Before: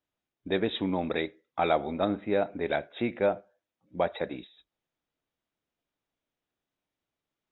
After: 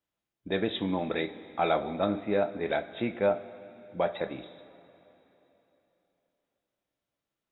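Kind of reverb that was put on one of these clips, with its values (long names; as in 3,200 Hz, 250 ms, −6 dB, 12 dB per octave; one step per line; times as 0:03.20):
coupled-rooms reverb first 0.24 s, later 3.4 s, from −18 dB, DRR 6 dB
level −1.5 dB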